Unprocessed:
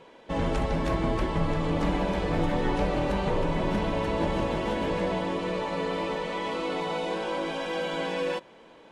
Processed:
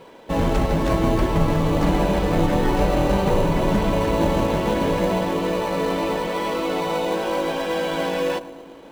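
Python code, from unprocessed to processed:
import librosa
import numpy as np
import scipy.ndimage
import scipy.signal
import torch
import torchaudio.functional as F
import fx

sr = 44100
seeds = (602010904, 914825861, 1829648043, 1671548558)

p1 = fx.echo_filtered(x, sr, ms=112, feedback_pct=79, hz=890.0, wet_db=-12)
p2 = fx.sample_hold(p1, sr, seeds[0], rate_hz=3400.0, jitter_pct=0)
p3 = p1 + (p2 * librosa.db_to_amplitude(-8.5))
y = p3 * librosa.db_to_amplitude(4.5)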